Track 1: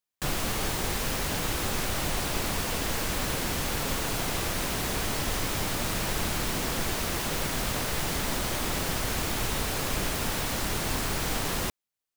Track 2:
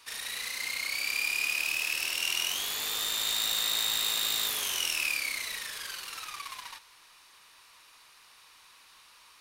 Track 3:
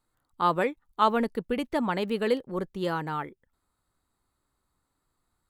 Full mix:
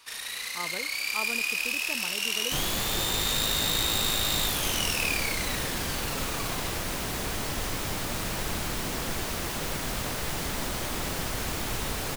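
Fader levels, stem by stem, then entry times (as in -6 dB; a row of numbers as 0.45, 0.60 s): -2.0, +1.0, -14.0 dB; 2.30, 0.00, 0.15 s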